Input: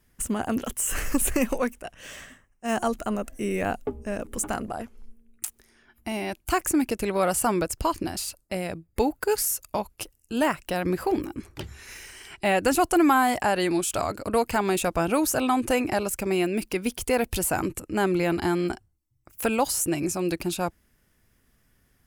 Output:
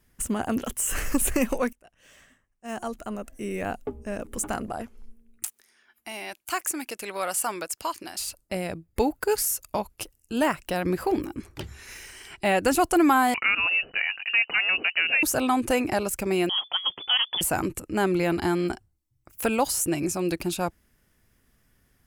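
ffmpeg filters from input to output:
-filter_complex "[0:a]asettb=1/sr,asplit=3[s0][s1][s2];[s0]atrim=end=5.474[s3];[s1]atrim=start=5.47:end=8.2,asetpts=PTS-STARTPTS,afade=t=in:d=0.004:c=qsin,afade=t=out:st=2.726:d=0.004:c=qsin,highpass=f=1200:p=1[s4];[s2]atrim=start=8.196[s5];[s3][s4]acrossfade=d=0.004:c1=hsin:c2=qsin[s6];[s6][s5]acrossfade=d=0.004:c1=qsin:c2=hsin,asettb=1/sr,asplit=3[s7][s8][s9];[s7]atrim=end=13.344[s10];[s8]atrim=start=13.34:end=15.23,asetpts=PTS-STARTPTS,afade=t=in:d=0.004:c=qsin,afade=t=out:st=1.886:d=0.004:c=qsin,lowpass=f=2600:t=q:w=0.5098,lowpass=f=2600:t=q:w=0.6013,lowpass=f=2600:t=q:w=0.9,lowpass=f=2600:t=q:w=2.563,afreqshift=-3000[s11];[s9]atrim=start=15.226[s12];[s10][s11]acrossfade=d=0.004:c1=hsin:c2=qsin[s13];[s13][s12]acrossfade=d=0.004:c1=qsin:c2=hsin,asettb=1/sr,asplit=3[s14][s15][s16];[s14]atrim=end=16.494[s17];[s15]atrim=start=16.49:end=17.41,asetpts=PTS-STARTPTS,afade=t=in:d=0.004:c=qsin,afade=t=out:st=0.916:d=0.004:c=qsin,lowpass=f=3000:t=q:w=0.5098,lowpass=f=3000:t=q:w=0.6013,lowpass=f=3000:t=q:w=0.9,lowpass=f=3000:t=q:w=2.563,afreqshift=-3500[s18];[s16]atrim=start=17.406[s19];[s17][s18]acrossfade=d=0.004:c1=hsin:c2=qsin[s20];[s20][s19]acrossfade=d=0.004:c1=qsin:c2=hsin,asplit=2[s21][s22];[s21]atrim=end=1.73,asetpts=PTS-STARTPTS,afade=t=out:st=1.726:d=0.004:c=hsin:silence=0.105925[s23];[s22]atrim=start=1.73,asetpts=PTS-STARTPTS,afade=t=in:d=3.02:silence=0.105925[s24];[s23][s24]concat=n=2:v=0:a=1"

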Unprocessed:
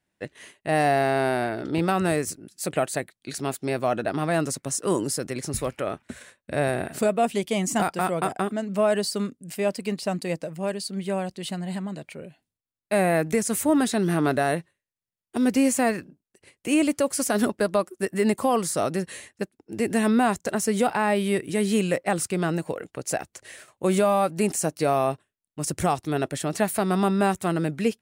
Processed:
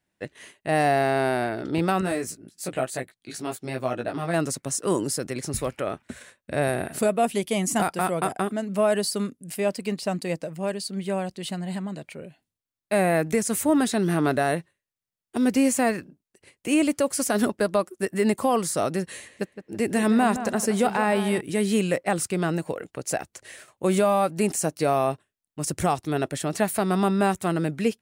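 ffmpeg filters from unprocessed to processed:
-filter_complex "[0:a]asettb=1/sr,asplit=3[s0][s1][s2];[s0]atrim=end=2.014[s3];[s1]atrim=start=2.01:end=4.34,asetpts=PTS-STARTPTS,afade=t=in:d=0.004:c=qsin,afade=t=out:st=2.326:d=0.004:c=qsin,flanger=delay=15.5:depth=2.5:speed=1.1[s4];[s2]atrim=start=4.336[s5];[s3][s4]acrossfade=d=0.004:c1=hsin:c2=qsin[s6];[s6][s5]acrossfade=d=0.004:c1=qsin:c2=hsin,asettb=1/sr,asplit=3[s7][s8][s9];[s7]atrim=end=6.624[s10];[s8]atrim=start=6.62:end=9.61,asetpts=PTS-STARTPTS,afade=t=in:d=0.004:c=qsin,afade=t=out:st=2.986:d=0.004:c=qsin,equalizer=f=11000:w=3:g=9[s11];[s9]atrim=start=9.606[s12];[s10][s11]acrossfade=d=0.004:c1=hsin:c2=qsin[s13];[s13][s12]acrossfade=d=0.004:c1=qsin:c2=hsin,asettb=1/sr,asplit=3[s14][s15][s16];[s14]atrim=end=19.064[s17];[s15]atrim=start=19.06:end=21.41,asetpts=PTS-STARTPTS,afade=t=in:d=0.004:c=qsin,afade=t=out:st=2.346:d=0.004:c=qsin,asplit=2[s18][s19];[s19]adelay=165,lowpass=f=2500:p=1,volume=0.299,asplit=2[s20][s21];[s21]adelay=165,lowpass=f=2500:p=1,volume=0.42,asplit=2[s22][s23];[s23]adelay=165,lowpass=f=2500:p=1,volume=0.42,asplit=2[s24][s25];[s25]adelay=165,lowpass=f=2500:p=1,volume=0.42[s26];[s18][s20][s22][s24][s26]amix=inputs=5:normalize=0,atrim=end_sample=103635[s27];[s16]atrim=start=21.406[s28];[s17][s27]acrossfade=d=0.004:c1=hsin:c2=qsin[s29];[s29][s28]acrossfade=d=0.004:c1=qsin:c2=hsin"

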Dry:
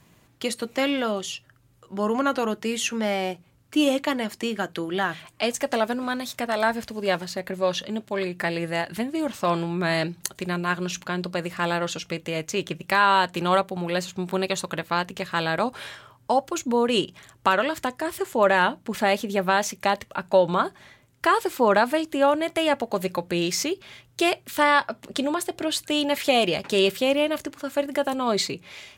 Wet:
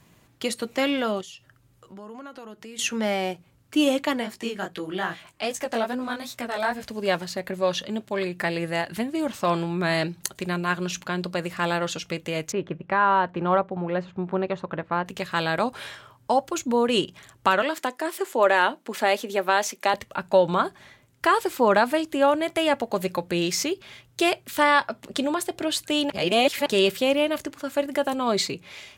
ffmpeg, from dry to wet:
-filter_complex "[0:a]asettb=1/sr,asplit=3[s0][s1][s2];[s0]atrim=end=1.214[s3];[s1]atrim=start=1.21:end=2.79,asetpts=PTS-STARTPTS,afade=t=in:d=0.004:c=qsin,afade=t=out:st=1.576:d=0.004:c=qsin,acompressor=threshold=0.00708:ratio=3:attack=3.2:release=140:knee=1:detection=peak[s4];[s2]atrim=start=2.786[s5];[s3][s4]acrossfade=d=0.004:c1=hsin:c2=qsin[s6];[s6][s5]acrossfade=d=0.004:c1=qsin:c2=hsin,asplit=3[s7][s8][s9];[s7]afade=t=out:st=4.21:d=0.02[s10];[s8]flanger=delay=15.5:depth=6.6:speed=2.5,afade=t=in:st=4.21:d=0.02,afade=t=out:st=6.84:d=0.02[s11];[s9]afade=t=in:st=6.84:d=0.02[s12];[s10][s11][s12]amix=inputs=3:normalize=0,asettb=1/sr,asplit=3[s13][s14][s15];[s13]atrim=end=12.524[s16];[s14]atrim=start=12.52:end=15.06,asetpts=PTS-STARTPTS,afade=t=in:d=0.004:c=qsin,afade=t=out:st=2.536:d=0.004:c=qsin,lowpass=1500[s17];[s15]atrim=start=15.056[s18];[s16][s17]acrossfade=d=0.004:c1=hsin:c2=qsin[s19];[s19][s18]acrossfade=d=0.004:c1=qsin:c2=hsin,asettb=1/sr,asplit=3[s20][s21][s22];[s20]atrim=end=17.624[s23];[s21]atrim=start=17.62:end=19.94,asetpts=PTS-STARTPTS,afade=t=in:d=0.004:c=qsin,afade=t=out:st=2.316:d=0.004:c=qsin,highpass=f=260:w=0.5412,highpass=f=260:w=1.3066[s24];[s22]atrim=start=19.936[s25];[s23][s24]acrossfade=d=0.004:c1=hsin:c2=qsin[s26];[s26][s25]acrossfade=d=0.004:c1=qsin:c2=hsin,asplit=3[s27][s28][s29];[s27]atrim=end=26.102[s30];[s28]atrim=start=26.098:end=26.662,asetpts=PTS-STARTPTS,areverse[s31];[s29]atrim=start=26.658[s32];[s30][s31]acrossfade=d=0.004:c1=hsin:c2=hsin[s33];[s33][s32]acrossfade=d=0.004:c1=hsin:c2=hsin"

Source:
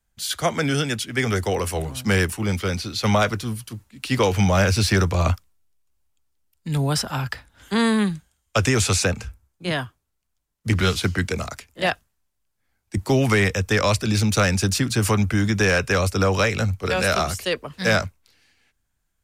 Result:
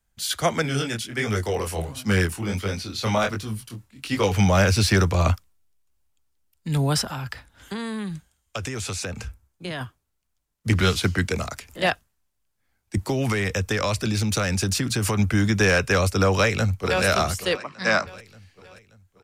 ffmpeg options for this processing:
-filter_complex "[0:a]asettb=1/sr,asplit=3[s0][s1][s2];[s0]atrim=end=0.624[s3];[s1]atrim=start=0.62:end=4.32,asetpts=PTS-STARTPTS,afade=t=in:d=0.004:c=qsin,afade=t=out:st=3.696:d=0.004:c=qsin,flanger=delay=19:depth=7:speed=1.4[s4];[s2]atrim=start=4.316[s5];[s3][s4]acrossfade=d=0.004:c1=hsin:c2=qsin[s6];[s6][s5]acrossfade=d=0.004:c1=qsin:c2=hsin,asettb=1/sr,asplit=3[s7][s8][s9];[s7]atrim=end=7.044[s10];[s8]atrim=start=7.04:end=9.81,asetpts=PTS-STARTPTS,afade=t=in:d=0.004:c=qsin,afade=t=out:st=2.766:d=0.004:c=qsin,acompressor=threshold=0.0447:ratio=6:attack=3.2:release=140:knee=1:detection=peak[s11];[s9]atrim=start=9.806[s12];[s10][s11]acrossfade=d=0.004:c1=hsin:c2=qsin[s13];[s13][s12]acrossfade=d=0.004:c1=qsin:c2=hsin,asettb=1/sr,asplit=3[s14][s15][s16];[s14]atrim=end=11.364[s17];[s15]atrim=start=11.36:end=11.82,asetpts=PTS-STARTPTS,afade=t=in:d=0.004:c=qsin,afade=t=out:st=0.456:d=0.004:c=qsin,acompressor=mode=upward:threshold=0.0282:ratio=2.5:attack=3.2:release=140:knee=2.83:detection=peak[s18];[s16]atrim=start=11.816[s19];[s17][s18]acrossfade=d=0.004:c1=hsin:c2=qsin[s20];[s20][s19]acrossfade=d=0.004:c1=qsin:c2=hsin,asettb=1/sr,asplit=3[s21][s22][s23];[s21]atrim=end=13.054[s24];[s22]atrim=start=13.05:end=15.19,asetpts=PTS-STARTPTS,afade=t=in:d=0.004:c=qsin,afade=t=out:st=2.136:d=0.004:c=qsin,acompressor=threshold=0.112:ratio=6:attack=3.2:release=140:knee=1:detection=peak[s25];[s23]atrim=start=15.186[s26];[s24][s25]acrossfade=d=0.004:c1=hsin:c2=qsin[s27];[s27][s26]acrossfade=d=0.004:c1=qsin:c2=hsin,asplit=2[s28][s29];[s29]afade=t=in:st=16.26:d=0.01,afade=t=out:st=17.04:d=0.01,aecho=0:1:580|1160|1740|2320|2900:0.188365|0.0941825|0.0470912|0.0235456|0.0117728[s30];[s28][s30]amix=inputs=2:normalize=0,asplit=3[s31][s32][s33];[s31]afade=t=out:st=17.56:d=0.02[s34];[s32]highpass=240,equalizer=f=450:t=q:w=4:g=-8,equalizer=f=1100:t=q:w=4:g=5,equalizer=f=3300:t=q:w=4:g=-8,equalizer=f=6700:t=q:w=4:g=-5,lowpass=f=7200:w=0.5412,lowpass=f=7200:w=1.3066,afade=t=in:st=17.56:d=0.02,afade=t=out:st=18.06:d=0.02[s35];[s33]afade=t=in:st=18.06:d=0.02[s36];[s34][s35][s36]amix=inputs=3:normalize=0"

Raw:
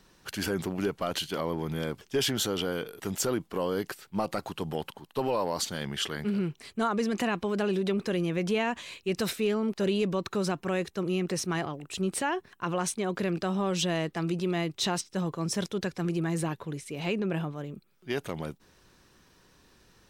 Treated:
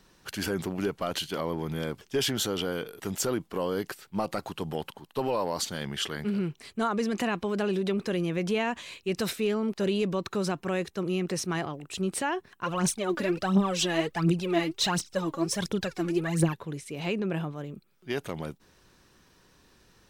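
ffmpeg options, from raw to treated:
-filter_complex "[0:a]asplit=3[s0][s1][s2];[s0]afade=t=out:st=12.64:d=0.02[s3];[s1]aphaser=in_gain=1:out_gain=1:delay=3.7:decay=0.7:speed=1.4:type=triangular,afade=t=in:st=12.64:d=0.02,afade=t=out:st=16.53:d=0.02[s4];[s2]afade=t=in:st=16.53:d=0.02[s5];[s3][s4][s5]amix=inputs=3:normalize=0"

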